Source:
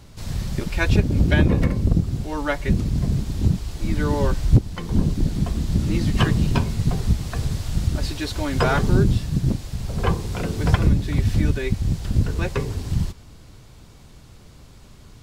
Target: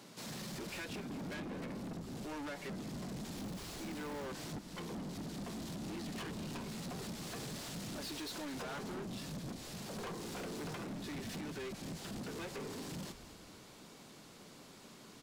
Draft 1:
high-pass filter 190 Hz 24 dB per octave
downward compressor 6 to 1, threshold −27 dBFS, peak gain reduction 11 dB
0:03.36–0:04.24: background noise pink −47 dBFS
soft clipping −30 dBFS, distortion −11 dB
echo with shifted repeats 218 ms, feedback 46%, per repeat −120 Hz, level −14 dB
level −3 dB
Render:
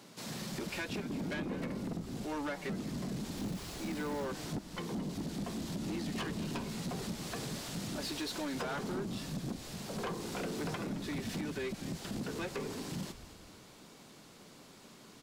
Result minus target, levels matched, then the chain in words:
soft clipping: distortion −5 dB
high-pass filter 190 Hz 24 dB per octave
downward compressor 6 to 1, threshold −27 dBFS, peak gain reduction 11 dB
0:03.36–0:04.24: background noise pink −47 dBFS
soft clipping −38 dBFS, distortion −5 dB
echo with shifted repeats 218 ms, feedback 46%, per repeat −120 Hz, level −14 dB
level −3 dB

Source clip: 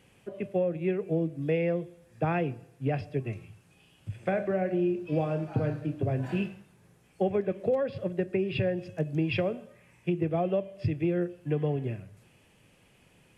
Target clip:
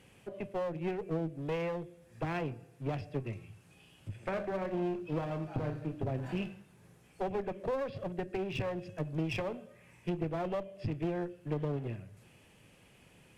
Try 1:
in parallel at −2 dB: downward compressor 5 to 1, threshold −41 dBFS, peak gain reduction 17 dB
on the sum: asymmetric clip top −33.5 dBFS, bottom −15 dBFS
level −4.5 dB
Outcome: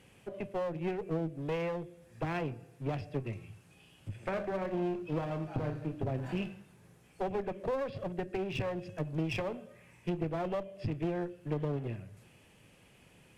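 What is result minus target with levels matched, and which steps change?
downward compressor: peak gain reduction −6 dB
change: downward compressor 5 to 1, threshold −48.5 dBFS, peak gain reduction 23 dB

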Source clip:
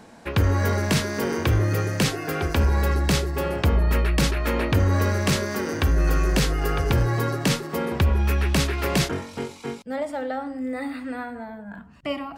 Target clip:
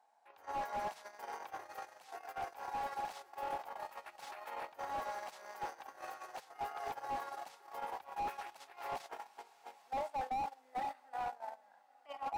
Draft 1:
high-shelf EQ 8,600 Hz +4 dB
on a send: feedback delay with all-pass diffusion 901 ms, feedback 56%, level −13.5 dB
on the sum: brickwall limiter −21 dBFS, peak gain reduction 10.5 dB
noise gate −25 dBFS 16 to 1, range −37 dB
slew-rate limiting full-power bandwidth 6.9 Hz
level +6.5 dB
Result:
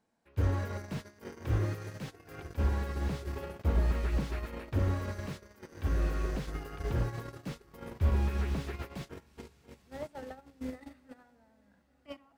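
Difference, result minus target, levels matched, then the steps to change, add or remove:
1,000 Hz band −16.0 dB
add first: high-pass with resonance 790 Hz, resonance Q 7.3

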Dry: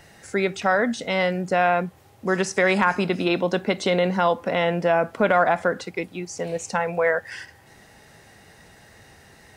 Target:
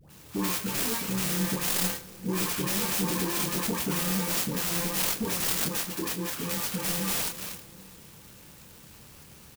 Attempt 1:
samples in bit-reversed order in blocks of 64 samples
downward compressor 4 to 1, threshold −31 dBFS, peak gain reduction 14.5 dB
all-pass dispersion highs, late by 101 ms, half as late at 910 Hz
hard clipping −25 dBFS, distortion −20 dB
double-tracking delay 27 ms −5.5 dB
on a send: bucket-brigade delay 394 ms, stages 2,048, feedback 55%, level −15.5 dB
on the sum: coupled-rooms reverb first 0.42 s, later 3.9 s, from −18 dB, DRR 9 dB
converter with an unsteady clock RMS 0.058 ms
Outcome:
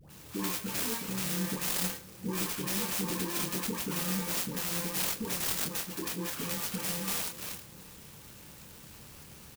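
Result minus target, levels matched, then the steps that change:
downward compressor: peak gain reduction +7 dB
change: downward compressor 4 to 1, threshold −21.5 dBFS, peak gain reduction 7.5 dB

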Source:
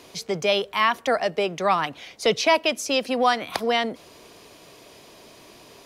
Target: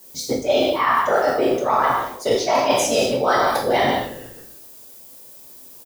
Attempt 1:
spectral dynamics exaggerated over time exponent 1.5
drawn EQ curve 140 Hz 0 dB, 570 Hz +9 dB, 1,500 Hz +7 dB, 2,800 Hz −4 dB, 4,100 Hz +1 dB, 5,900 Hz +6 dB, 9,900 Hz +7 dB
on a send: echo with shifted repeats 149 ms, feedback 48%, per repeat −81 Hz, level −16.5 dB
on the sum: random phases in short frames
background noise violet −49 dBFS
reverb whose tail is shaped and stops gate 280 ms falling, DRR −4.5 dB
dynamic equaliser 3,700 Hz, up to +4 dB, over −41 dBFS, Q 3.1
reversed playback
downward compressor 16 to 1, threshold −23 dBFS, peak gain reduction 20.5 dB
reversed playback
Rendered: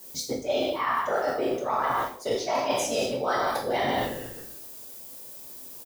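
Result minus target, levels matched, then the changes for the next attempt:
downward compressor: peak gain reduction +8.5 dB
change: downward compressor 16 to 1, threshold −14 dBFS, peak gain reduction 12 dB

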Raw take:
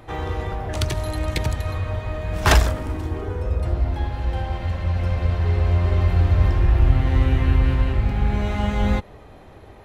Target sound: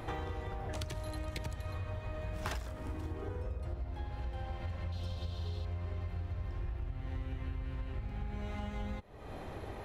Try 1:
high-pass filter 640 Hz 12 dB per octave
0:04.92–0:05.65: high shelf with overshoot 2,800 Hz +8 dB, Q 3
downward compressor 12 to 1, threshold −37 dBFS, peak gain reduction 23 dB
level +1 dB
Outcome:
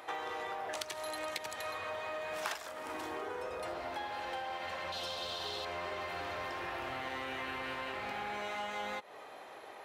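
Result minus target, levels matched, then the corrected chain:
500 Hz band +3.5 dB
0:04.92–0:05.65: high shelf with overshoot 2,800 Hz +8 dB, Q 3
downward compressor 12 to 1, threshold −37 dBFS, peak gain reduction 28 dB
level +1 dB

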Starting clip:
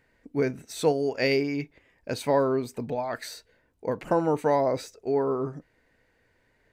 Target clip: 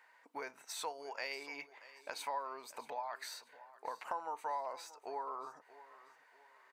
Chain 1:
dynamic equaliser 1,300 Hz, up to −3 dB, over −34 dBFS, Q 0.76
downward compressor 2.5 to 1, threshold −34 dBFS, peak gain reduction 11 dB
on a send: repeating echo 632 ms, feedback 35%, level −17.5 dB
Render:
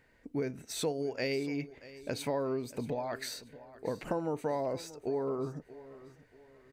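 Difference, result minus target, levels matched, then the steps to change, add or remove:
1,000 Hz band −9.0 dB; downward compressor: peak gain reduction −7 dB
add after dynamic equaliser: high-pass with resonance 960 Hz, resonance Q 3.4
change: downward compressor 2.5 to 1, threshold −45 dBFS, peak gain reduction 17.5 dB

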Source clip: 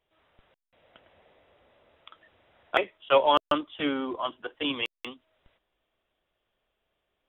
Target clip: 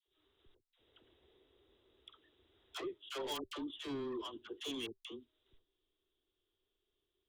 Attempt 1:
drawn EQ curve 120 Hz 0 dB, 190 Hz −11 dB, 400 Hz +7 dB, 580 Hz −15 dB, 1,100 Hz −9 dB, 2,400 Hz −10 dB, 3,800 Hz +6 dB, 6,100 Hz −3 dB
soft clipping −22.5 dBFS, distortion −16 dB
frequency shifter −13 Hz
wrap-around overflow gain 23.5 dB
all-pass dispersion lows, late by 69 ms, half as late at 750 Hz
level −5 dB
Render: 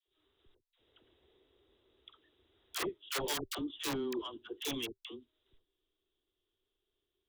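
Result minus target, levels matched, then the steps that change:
soft clipping: distortion −9 dB
change: soft clipping −32.5 dBFS, distortion −7 dB

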